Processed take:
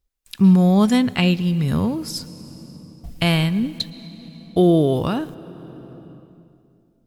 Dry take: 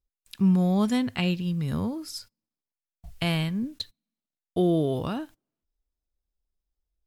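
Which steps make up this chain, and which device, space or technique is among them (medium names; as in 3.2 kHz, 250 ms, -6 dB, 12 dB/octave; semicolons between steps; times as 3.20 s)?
compressed reverb return (on a send at -7 dB: reverberation RT60 2.3 s, pre-delay 104 ms + compression 6:1, threshold -35 dBFS, peak gain reduction 17 dB); on the sum: trim +8 dB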